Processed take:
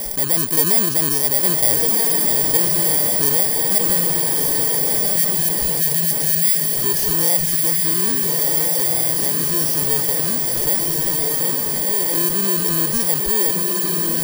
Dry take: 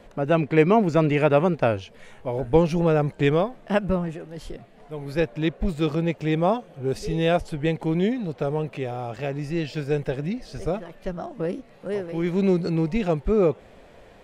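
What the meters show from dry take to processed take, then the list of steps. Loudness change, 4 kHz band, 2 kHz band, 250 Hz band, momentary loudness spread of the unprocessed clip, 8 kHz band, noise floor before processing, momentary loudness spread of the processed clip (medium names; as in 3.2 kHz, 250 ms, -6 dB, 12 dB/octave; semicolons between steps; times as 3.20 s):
+9.5 dB, +14.5 dB, +3.5 dB, -3.5 dB, 13 LU, +33.0 dB, -50 dBFS, 3 LU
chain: bit-reversed sample order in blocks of 32 samples; tone controls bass -4 dB, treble +13 dB; spectral selection erased 5.05–6.64 s, 210–1600 Hz; random-step tremolo; on a send: echo that smears into a reverb 1352 ms, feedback 46%, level -5 dB; on the sum: level flattener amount 70%; trim -8.5 dB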